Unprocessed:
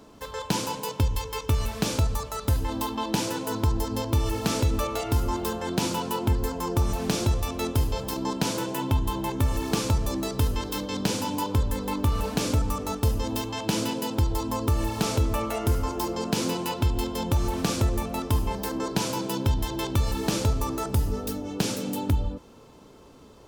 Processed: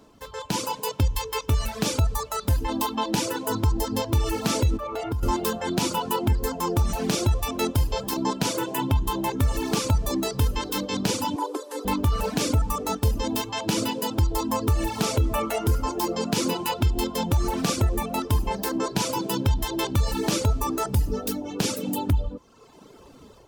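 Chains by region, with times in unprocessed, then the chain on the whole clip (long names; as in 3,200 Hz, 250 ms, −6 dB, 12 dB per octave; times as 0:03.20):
0:04.77–0:05.23: high-shelf EQ 3,400 Hz −11.5 dB + downward compressor, threshold −28 dBFS
0:11.36–0:11.85: linear delta modulator 64 kbit/s, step −42 dBFS + dynamic equaliser 2,400 Hz, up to −8 dB, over −49 dBFS, Q 0.88 + Butterworth high-pass 280 Hz 96 dB per octave
whole clip: reverb reduction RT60 1.1 s; brickwall limiter −18 dBFS; automatic gain control gain up to 8 dB; level −3 dB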